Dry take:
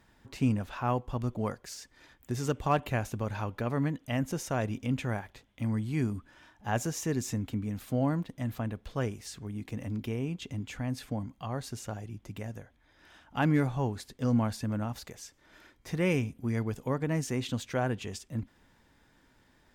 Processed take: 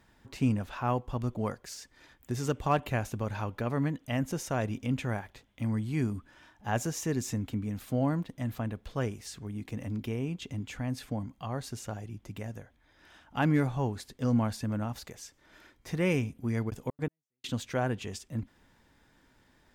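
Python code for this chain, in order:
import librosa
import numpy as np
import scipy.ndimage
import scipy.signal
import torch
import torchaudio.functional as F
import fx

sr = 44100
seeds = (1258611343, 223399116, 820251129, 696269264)

y = fx.step_gate(x, sr, bpm=166, pattern='.xx.x...', floor_db=-60.0, edge_ms=4.5, at=(16.69, 17.58), fade=0.02)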